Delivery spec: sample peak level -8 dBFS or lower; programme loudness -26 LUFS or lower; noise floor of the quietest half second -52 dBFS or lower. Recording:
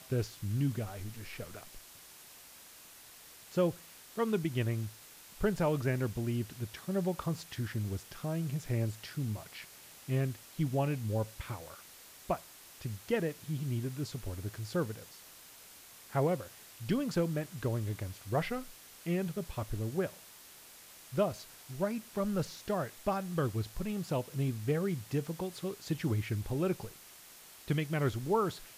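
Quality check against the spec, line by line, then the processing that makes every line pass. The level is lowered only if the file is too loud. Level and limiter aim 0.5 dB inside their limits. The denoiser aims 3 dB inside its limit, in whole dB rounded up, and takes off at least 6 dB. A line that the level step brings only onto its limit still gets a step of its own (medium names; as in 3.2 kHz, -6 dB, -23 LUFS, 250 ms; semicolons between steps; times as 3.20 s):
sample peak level -18.5 dBFS: pass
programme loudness -35.5 LUFS: pass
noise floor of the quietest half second -54 dBFS: pass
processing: none needed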